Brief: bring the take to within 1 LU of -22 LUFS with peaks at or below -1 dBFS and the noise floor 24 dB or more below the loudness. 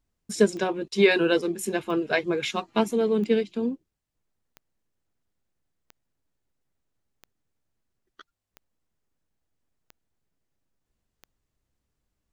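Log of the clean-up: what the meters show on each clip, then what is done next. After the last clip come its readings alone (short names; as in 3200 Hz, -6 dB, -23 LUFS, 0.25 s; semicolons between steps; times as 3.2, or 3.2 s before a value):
clicks 9; loudness -24.5 LUFS; peak -6.5 dBFS; loudness target -22.0 LUFS
-> de-click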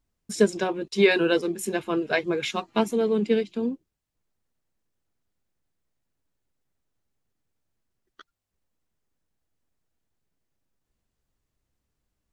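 clicks 0; loudness -24.5 LUFS; peak -6.5 dBFS; loudness target -22.0 LUFS
-> gain +2.5 dB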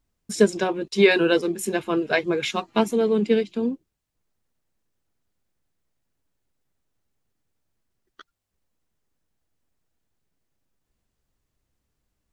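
loudness -22.0 LUFS; peak -4.0 dBFS; noise floor -80 dBFS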